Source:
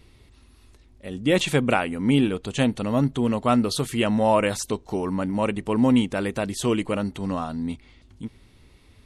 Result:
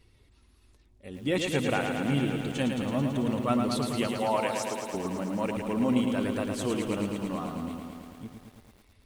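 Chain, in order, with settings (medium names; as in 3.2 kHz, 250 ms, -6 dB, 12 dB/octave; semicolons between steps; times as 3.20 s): coarse spectral quantiser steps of 15 dB; 4.07–4.94 s: high-pass 400 Hz 12 dB/octave; bit-crushed delay 110 ms, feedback 80%, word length 8-bit, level -5.5 dB; trim -7.5 dB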